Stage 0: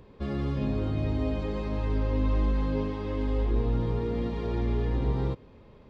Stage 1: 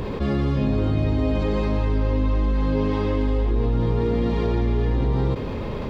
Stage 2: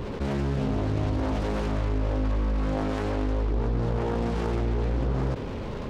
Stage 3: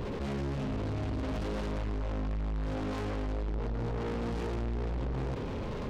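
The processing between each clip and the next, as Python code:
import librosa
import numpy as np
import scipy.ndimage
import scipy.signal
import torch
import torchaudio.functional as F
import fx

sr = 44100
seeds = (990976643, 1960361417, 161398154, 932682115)

y1 = fx.env_flatten(x, sr, amount_pct=70)
y1 = y1 * 10.0 ** (3.5 / 20.0)
y2 = fx.self_delay(y1, sr, depth_ms=0.81)
y2 = y2 * 10.0 ** (-4.5 / 20.0)
y3 = 10.0 ** (-30.5 / 20.0) * np.tanh(y2 / 10.0 ** (-30.5 / 20.0))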